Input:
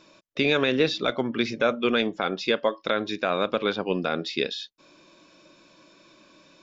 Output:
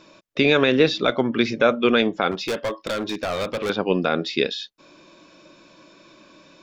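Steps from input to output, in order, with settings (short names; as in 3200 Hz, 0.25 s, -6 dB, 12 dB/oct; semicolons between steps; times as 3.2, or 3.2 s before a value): high shelf 3000 Hz -3.5 dB; 2.31–3.7 hard clip -27 dBFS, distortion -9 dB; gain +5.5 dB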